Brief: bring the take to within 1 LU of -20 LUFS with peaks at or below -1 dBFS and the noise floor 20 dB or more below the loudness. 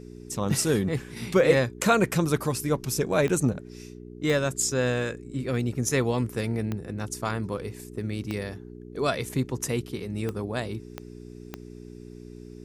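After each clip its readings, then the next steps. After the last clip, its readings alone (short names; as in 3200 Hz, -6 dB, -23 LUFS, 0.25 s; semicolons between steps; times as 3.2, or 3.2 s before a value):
clicks 7; hum 60 Hz; harmonics up to 420 Hz; hum level -41 dBFS; loudness -27.0 LUFS; peak -7.5 dBFS; loudness target -20.0 LUFS
-> de-click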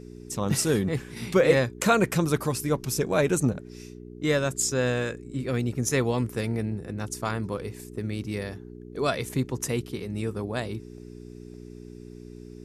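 clicks 0; hum 60 Hz; harmonics up to 420 Hz; hum level -41 dBFS
-> de-hum 60 Hz, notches 7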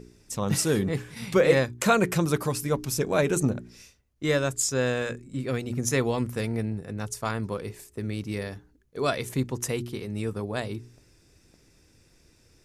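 hum none; loudness -27.5 LUFS; peak -7.5 dBFS; loudness target -20.0 LUFS
-> gain +7.5 dB; limiter -1 dBFS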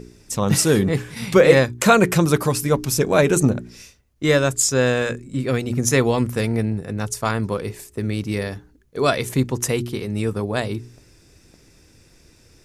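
loudness -20.0 LUFS; peak -1.0 dBFS; noise floor -54 dBFS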